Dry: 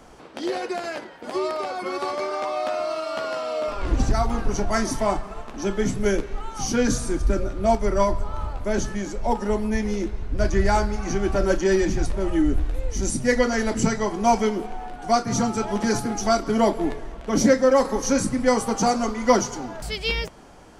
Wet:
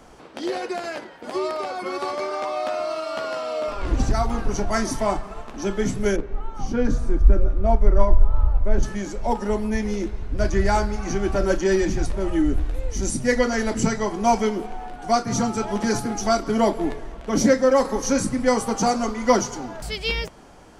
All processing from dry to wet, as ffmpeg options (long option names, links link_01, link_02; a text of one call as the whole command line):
ffmpeg -i in.wav -filter_complex "[0:a]asettb=1/sr,asplit=3[link_01][link_02][link_03];[link_01]atrim=end=6.164[link_04];[link_02]atrim=start=6.16:end=8.83,asetpts=PTS-STARTPTS,afade=type=in:duration=0.004:curve=qsin,afade=type=out:start_time=2.666:duration=0.004:curve=qsin,lowpass=frequency=1000:poles=1,asubboost=boost=7.5:cutoff=74[link_05];[link_03]atrim=start=8.826[link_06];[link_04][link_05]acrossfade=duration=0.004:curve1=hsin:curve2=qsin[link_07];[link_07][link_06]acrossfade=duration=0.004:curve1=qsin:curve2=hsin" out.wav